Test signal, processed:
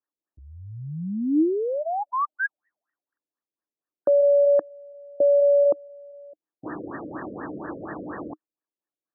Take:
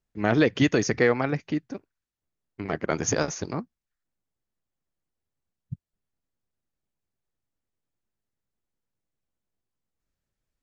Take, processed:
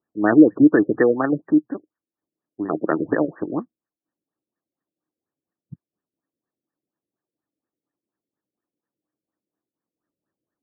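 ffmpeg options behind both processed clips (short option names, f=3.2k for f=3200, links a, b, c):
-af "highpass=200,equalizer=f=310:t=q:w=4:g=10,equalizer=f=1.2k:t=q:w=4:g=6,equalizer=f=3.1k:t=q:w=4:g=6,lowpass=f=5.1k:w=0.5412,lowpass=f=5.1k:w=1.3066,aexciter=amount=10:drive=8.4:freq=2.2k,afftfilt=real='re*lt(b*sr/1024,590*pow(1900/590,0.5+0.5*sin(2*PI*4.2*pts/sr)))':imag='im*lt(b*sr/1024,590*pow(1900/590,0.5+0.5*sin(2*PI*4.2*pts/sr)))':win_size=1024:overlap=0.75,volume=3.5dB"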